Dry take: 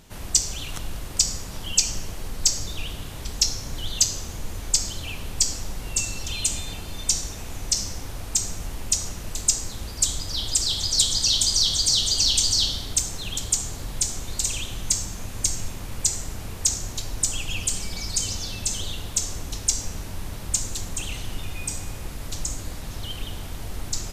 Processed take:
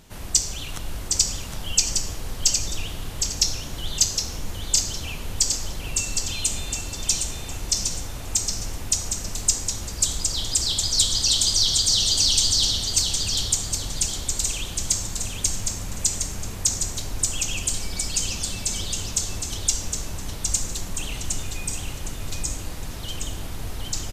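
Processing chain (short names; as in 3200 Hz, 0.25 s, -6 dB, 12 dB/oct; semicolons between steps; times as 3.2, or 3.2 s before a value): feedback echo 0.762 s, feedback 30%, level -5 dB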